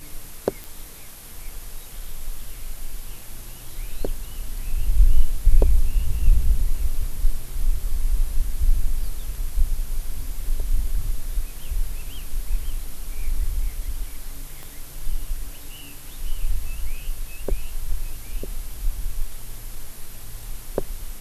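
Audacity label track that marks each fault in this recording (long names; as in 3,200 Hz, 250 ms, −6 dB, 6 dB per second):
0.640000	0.640000	click
14.630000	14.630000	click −23 dBFS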